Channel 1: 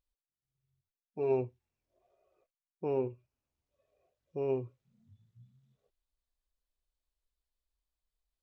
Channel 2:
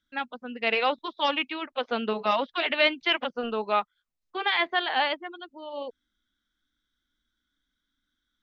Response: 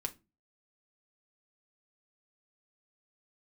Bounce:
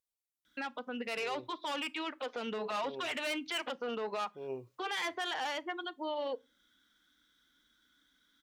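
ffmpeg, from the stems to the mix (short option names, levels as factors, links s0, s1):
-filter_complex "[0:a]aemphasis=mode=production:type=cd,volume=0.531[s0];[1:a]acontrast=35,asoftclip=type=tanh:threshold=0.106,acompressor=threshold=0.0447:ratio=6,adelay=450,volume=1.33,asplit=2[s1][s2];[s2]volume=0.335[s3];[2:a]atrim=start_sample=2205[s4];[s3][s4]afir=irnorm=-1:irlink=0[s5];[s0][s1][s5]amix=inputs=3:normalize=0,highpass=f=220:p=1,alimiter=level_in=1.78:limit=0.0631:level=0:latency=1:release=304,volume=0.562"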